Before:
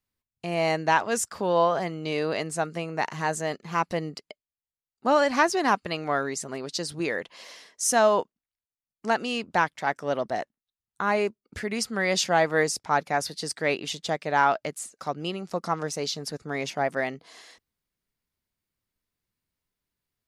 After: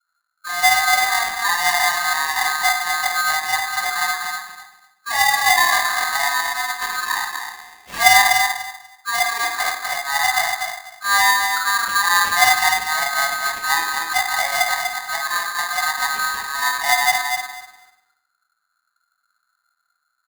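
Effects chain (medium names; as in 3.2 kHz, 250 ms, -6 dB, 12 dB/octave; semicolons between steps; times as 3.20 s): elliptic band-stop 670–3000 Hz; RIAA curve playback; in parallel at 0 dB: peak limiter -17.5 dBFS, peak gain reduction 7.5 dB; on the sum: small resonant body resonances 670/2600 Hz, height 10 dB; phase dispersion highs, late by 68 ms, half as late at 460 Hz; sample-and-hold 12×; feedback delay 245 ms, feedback 18%, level -6 dB; reverberation RT60 0.70 s, pre-delay 3 ms, DRR -3.5 dB; polarity switched at an audio rate 1.4 kHz; trim -9 dB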